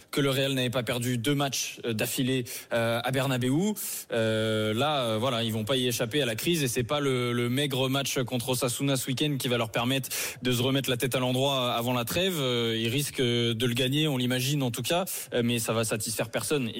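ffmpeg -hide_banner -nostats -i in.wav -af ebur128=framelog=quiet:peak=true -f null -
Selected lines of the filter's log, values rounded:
Integrated loudness:
  I:         -27.3 LUFS
  Threshold: -37.3 LUFS
Loudness range:
  LRA:         1.3 LU
  Threshold: -47.2 LUFS
  LRA low:   -27.9 LUFS
  LRA high:  -26.5 LUFS
True peak:
  Peak:      -15.7 dBFS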